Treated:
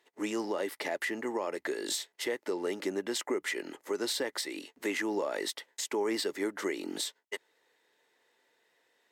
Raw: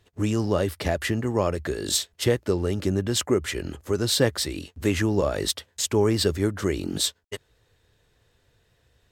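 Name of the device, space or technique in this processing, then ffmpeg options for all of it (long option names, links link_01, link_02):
laptop speaker: -af "highpass=frequency=280:width=0.5412,highpass=frequency=280:width=1.3066,equalizer=frequency=900:width_type=o:width=0.26:gain=7.5,equalizer=frequency=2000:width_type=o:width=0.29:gain=9,alimiter=limit=-17.5dB:level=0:latency=1:release=110,volume=-5dB"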